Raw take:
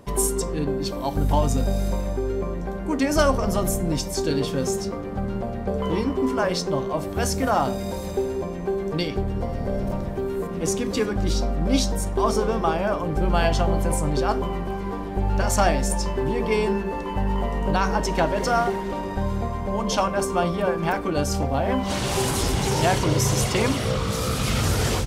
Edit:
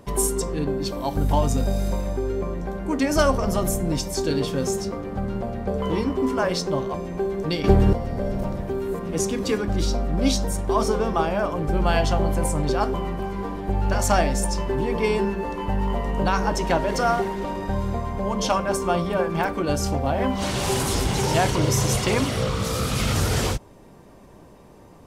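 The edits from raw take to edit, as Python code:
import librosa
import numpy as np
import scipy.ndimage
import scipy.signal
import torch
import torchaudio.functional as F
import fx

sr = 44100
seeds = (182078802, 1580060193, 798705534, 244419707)

y = fx.edit(x, sr, fx.cut(start_s=6.94, length_s=1.48),
    fx.clip_gain(start_s=9.12, length_s=0.29, db=10.0), tone=tone)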